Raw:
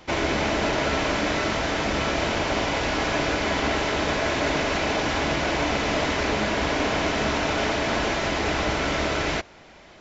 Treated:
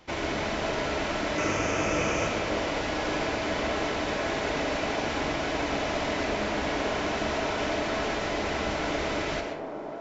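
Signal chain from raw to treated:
0:01.38–0:02.27: thirty-one-band graphic EQ 100 Hz +7 dB, 160 Hz +5 dB, 315 Hz +5 dB, 500 Hz +7 dB, 1,250 Hz +5 dB, 2,500 Hz +8 dB, 4,000 Hz −9 dB, 6,300 Hz +11 dB
delay with a band-pass on its return 566 ms, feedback 69%, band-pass 480 Hz, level −6 dB
comb and all-pass reverb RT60 0.85 s, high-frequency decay 0.55×, pre-delay 65 ms, DRR 4.5 dB
level −7 dB

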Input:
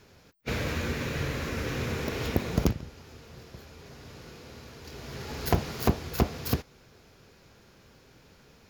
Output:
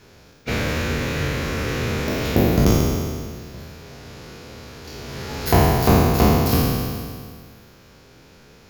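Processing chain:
peak hold with a decay on every bin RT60 2.01 s
level +4.5 dB

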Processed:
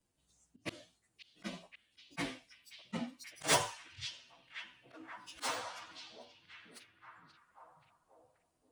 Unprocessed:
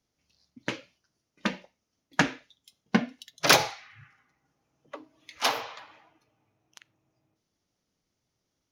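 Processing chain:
partials spread apart or drawn together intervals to 114%
volume swells 121 ms
in parallel at +1.5 dB: downward compressor, threshold −47 dBFS, peak gain reduction 24.5 dB
on the sum: echo through a band-pass that steps 531 ms, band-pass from 3,700 Hz, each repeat −0.7 octaves, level −8 dB
level −4.5 dB

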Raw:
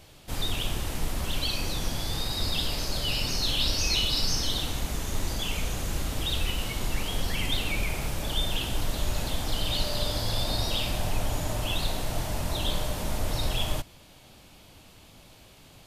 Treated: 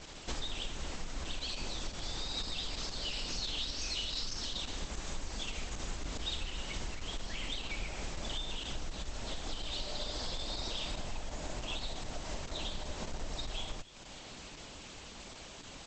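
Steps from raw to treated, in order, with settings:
variable-slope delta modulation 64 kbit/s
parametric band 110 Hz −12.5 dB 0.89 octaves
bit reduction 10 bits
downward compressor 16 to 1, threshold −39 dBFS, peak gain reduction 18.5 dB
delay with a high-pass on its return 280 ms, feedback 39%, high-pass 3,200 Hz, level −15.5 dB
hard clipping −34 dBFS, distortion −33 dB
dynamic equaliser 3,900 Hz, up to +3 dB, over −57 dBFS, Q 5.6
level +5.5 dB
Opus 10 kbit/s 48,000 Hz

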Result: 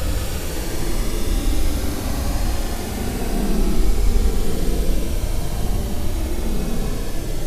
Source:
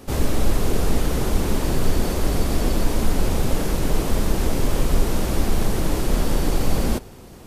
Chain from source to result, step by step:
rotating-speaker cabinet horn 6 Hz, later 1.1 Hz, at 0:04.38
extreme stretch with random phases 24×, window 0.05 s, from 0:05.34
on a send: delay with a high-pass on its return 80 ms, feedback 75%, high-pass 2,800 Hz, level −6 dB

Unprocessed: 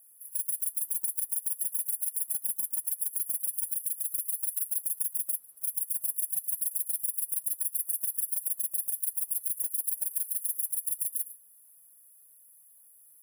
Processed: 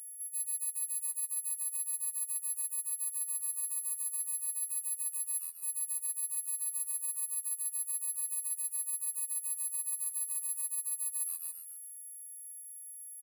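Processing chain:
every partial snapped to a pitch grid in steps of 4 semitones
in parallel at −7.5 dB: soft clipping −21.5 dBFS, distortion −8 dB
on the sum: single-tap delay 289 ms −14.5 dB
phases set to zero 159 Hz
echo with shifted repeats 134 ms, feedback 55%, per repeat +84 Hz, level −15.5 dB
reversed playback
downward compressor 6 to 1, threshold −30 dBFS, peak gain reduction 12 dB
reversed playback
level −3.5 dB

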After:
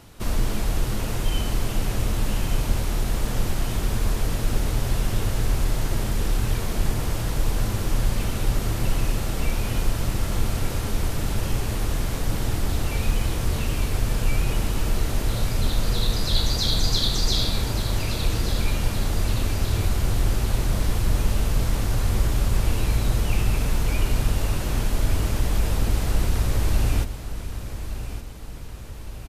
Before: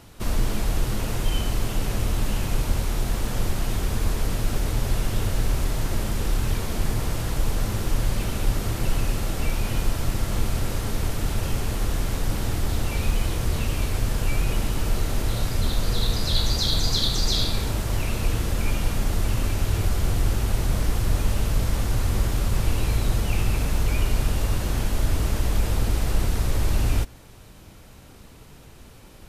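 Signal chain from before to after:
repeating echo 1,166 ms, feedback 52%, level −11.5 dB

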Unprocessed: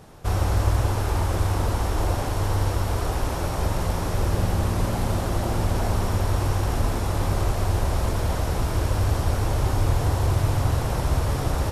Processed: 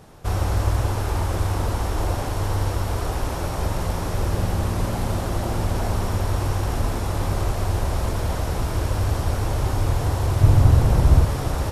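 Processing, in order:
0:10.41–0:11.25: low-shelf EQ 370 Hz +9 dB

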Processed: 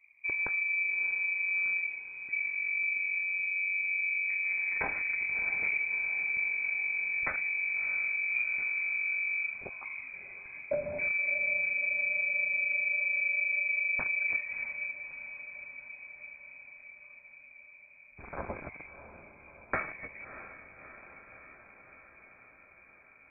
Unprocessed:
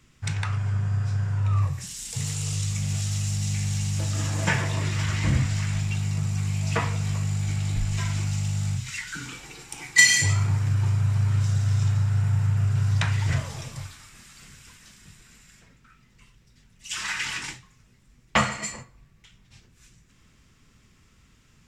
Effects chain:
adaptive Wiener filter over 41 samples
downward compressor 6 to 1, threshold −25 dBFS, peak gain reduction 13.5 dB
voice inversion scrambler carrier 2,600 Hz
speed change −7%
feedback delay with all-pass diffusion 641 ms, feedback 69%, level −12 dB
level −3.5 dB

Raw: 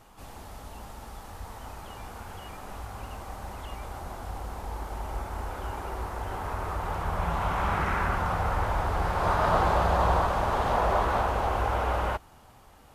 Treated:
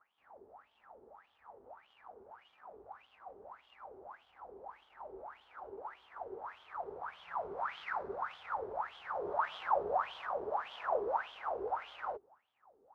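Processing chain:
running median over 15 samples
LFO wah 1.7 Hz 390–3,300 Hz, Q 12
one half of a high-frequency compander decoder only
level +4 dB

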